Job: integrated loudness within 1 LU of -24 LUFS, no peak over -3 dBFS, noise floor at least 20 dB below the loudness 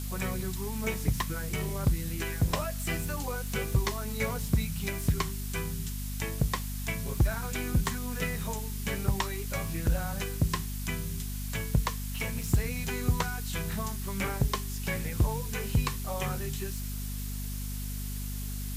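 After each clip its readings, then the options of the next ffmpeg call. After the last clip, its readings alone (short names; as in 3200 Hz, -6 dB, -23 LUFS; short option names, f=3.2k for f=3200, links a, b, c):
hum 50 Hz; harmonics up to 250 Hz; hum level -33 dBFS; noise floor -35 dBFS; noise floor target -52 dBFS; loudness -32.0 LUFS; peak -13.0 dBFS; loudness target -24.0 LUFS
-> -af "bandreject=f=50:t=h:w=4,bandreject=f=100:t=h:w=4,bandreject=f=150:t=h:w=4,bandreject=f=200:t=h:w=4,bandreject=f=250:t=h:w=4"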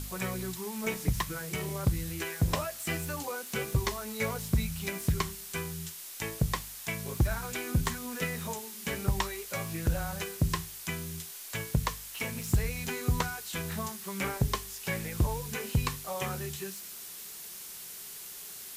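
hum none; noise floor -44 dBFS; noise floor target -54 dBFS
-> -af "afftdn=nr=10:nf=-44"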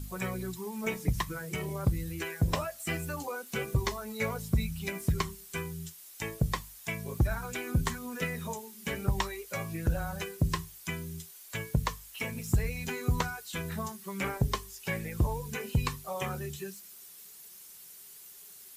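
noise floor -51 dBFS; noise floor target -54 dBFS
-> -af "afftdn=nr=6:nf=-51"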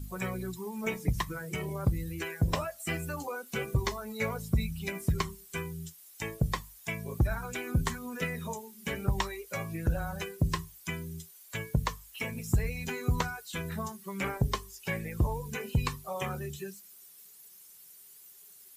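noise floor -54 dBFS; loudness -34.0 LUFS; peak -14.5 dBFS; loudness target -24.0 LUFS
-> -af "volume=10dB"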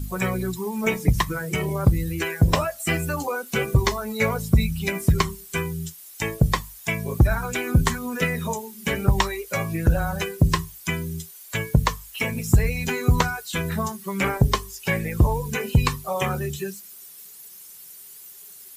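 loudness -24.0 LUFS; peak -4.5 dBFS; noise floor -44 dBFS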